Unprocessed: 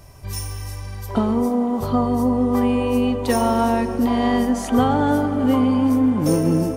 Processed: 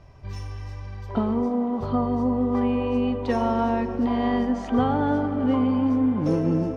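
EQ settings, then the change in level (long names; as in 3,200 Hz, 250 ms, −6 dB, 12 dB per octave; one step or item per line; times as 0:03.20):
high-frequency loss of the air 190 metres
−4.0 dB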